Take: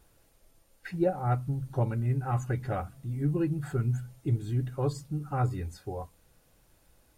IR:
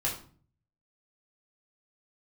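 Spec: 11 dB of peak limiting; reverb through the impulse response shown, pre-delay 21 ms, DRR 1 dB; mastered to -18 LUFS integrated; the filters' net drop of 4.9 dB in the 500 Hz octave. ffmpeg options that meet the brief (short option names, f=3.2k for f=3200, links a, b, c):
-filter_complex "[0:a]equalizer=f=500:t=o:g=-6.5,alimiter=level_in=4dB:limit=-24dB:level=0:latency=1,volume=-4dB,asplit=2[a][b];[1:a]atrim=start_sample=2205,adelay=21[c];[b][c]afir=irnorm=-1:irlink=0,volume=-7dB[d];[a][d]amix=inputs=2:normalize=0,volume=14.5dB"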